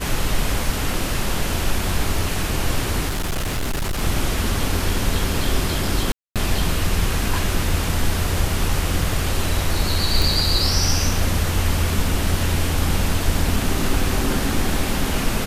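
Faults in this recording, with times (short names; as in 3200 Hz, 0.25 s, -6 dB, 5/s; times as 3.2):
3.09–4.02 clipped -19.5 dBFS
6.12–6.36 gap 0.237 s
10.22 pop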